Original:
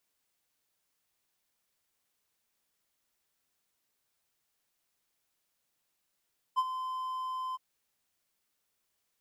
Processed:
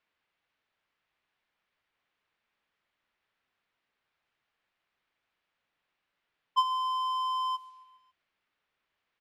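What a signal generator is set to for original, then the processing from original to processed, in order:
ADSR triangle 1030 Hz, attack 27 ms, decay 44 ms, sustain -11 dB, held 0.99 s, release 24 ms -20.5 dBFS
low-pass opened by the level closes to 1700 Hz, open at -38 dBFS; bell 3200 Hz +12.5 dB 2.7 oct; feedback echo 0.137 s, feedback 60%, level -22.5 dB

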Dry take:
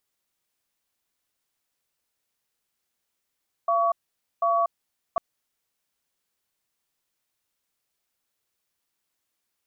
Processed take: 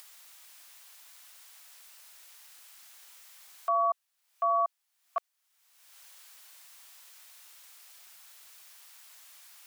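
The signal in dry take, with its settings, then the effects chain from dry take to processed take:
cadence 682 Hz, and 1130 Hz, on 0.24 s, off 0.50 s, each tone -22 dBFS 1.50 s
upward compressor, threshold -32 dBFS; Bessel high-pass 930 Hz, order 6

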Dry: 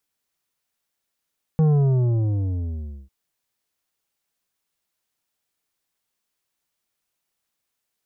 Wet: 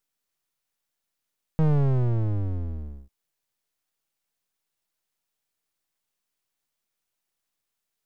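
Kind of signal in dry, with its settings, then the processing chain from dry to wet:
sub drop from 160 Hz, over 1.50 s, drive 9 dB, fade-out 1.47 s, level -15 dB
half-wave gain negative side -12 dB

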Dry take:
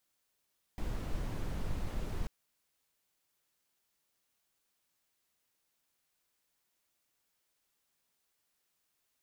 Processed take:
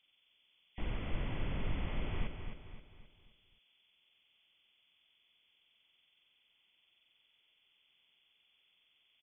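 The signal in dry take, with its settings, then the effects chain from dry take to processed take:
noise brown, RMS -35 dBFS 1.49 s
nonlinear frequency compression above 1900 Hz 4:1; on a send: feedback echo 0.263 s, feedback 43%, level -7.5 dB

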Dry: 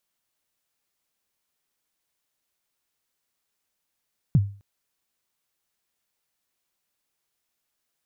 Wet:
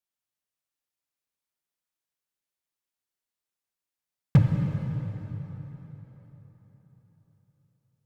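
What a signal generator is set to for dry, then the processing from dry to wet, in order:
kick drum length 0.26 s, from 170 Hz, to 100 Hz, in 40 ms, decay 0.38 s, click off, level -11 dB
dynamic EQ 200 Hz, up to +6 dB, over -35 dBFS, Q 1.3; added harmonics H 7 -19 dB, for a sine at -11.5 dBFS; plate-style reverb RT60 4.3 s, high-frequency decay 0.75×, DRR 0.5 dB

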